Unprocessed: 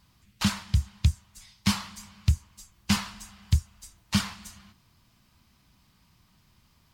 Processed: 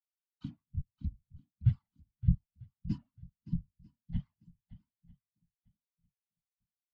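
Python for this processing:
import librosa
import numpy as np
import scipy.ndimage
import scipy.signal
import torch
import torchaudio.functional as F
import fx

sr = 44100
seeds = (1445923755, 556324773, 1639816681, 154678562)

y = fx.pitch_trill(x, sr, semitones=-7.0, every_ms=96)
y = fx.hum_notches(y, sr, base_hz=50, count=4)
y = fx.whisperise(y, sr, seeds[0])
y = fx.echo_swing(y, sr, ms=946, ratio=1.5, feedback_pct=43, wet_db=-7)
y = fx.spectral_expand(y, sr, expansion=2.5)
y = y * librosa.db_to_amplitude(-3.5)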